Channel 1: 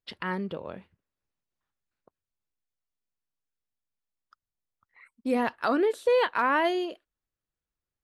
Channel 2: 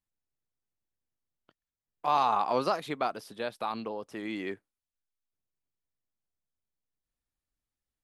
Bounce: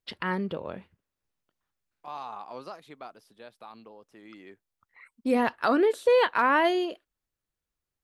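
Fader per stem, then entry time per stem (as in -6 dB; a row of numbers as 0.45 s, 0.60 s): +2.0 dB, -13.0 dB; 0.00 s, 0.00 s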